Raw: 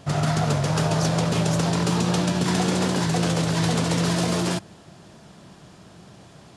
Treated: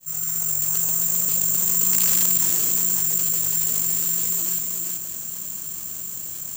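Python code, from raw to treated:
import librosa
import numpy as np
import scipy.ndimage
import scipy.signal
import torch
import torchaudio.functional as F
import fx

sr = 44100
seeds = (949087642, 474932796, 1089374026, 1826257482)

p1 = fx.fade_in_head(x, sr, length_s=0.79)
p2 = fx.doppler_pass(p1, sr, speed_mps=11, closest_m=2.4, pass_at_s=2.13)
p3 = fx.rider(p2, sr, range_db=4, speed_s=2.0)
p4 = p3 + fx.echo_single(p3, sr, ms=383, db=-12.0, dry=0)
p5 = (np.mod(10.0 ** (15.5 / 20.0) * p4 + 1.0, 2.0) - 1.0) / 10.0 ** (15.5 / 20.0)
p6 = fx.peak_eq(p5, sr, hz=710.0, db=-8.0, octaves=0.37)
p7 = (np.kron(scipy.signal.resample_poly(p6, 1, 6), np.eye(6)[0]) * 6)[:len(p6)]
p8 = fx.high_shelf(p7, sr, hz=2000.0, db=11.5)
p9 = fx.env_flatten(p8, sr, amount_pct=70)
y = F.gain(torch.from_numpy(p9), -14.0).numpy()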